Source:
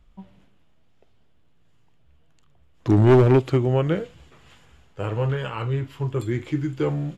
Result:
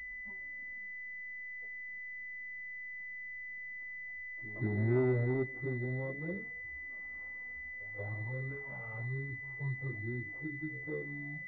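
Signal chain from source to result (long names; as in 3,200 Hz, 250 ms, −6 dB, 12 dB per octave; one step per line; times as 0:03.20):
downward compressor 1.5 to 1, threshold −53 dBFS, peak gain reduction 14.5 dB
flanger swept by the level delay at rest 4.8 ms, full sweep at −28 dBFS
time stretch by phase vocoder 1.6×
on a send: backwards echo 182 ms −17.5 dB
on the sum: switching amplifier with a slow clock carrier 2,000 Hz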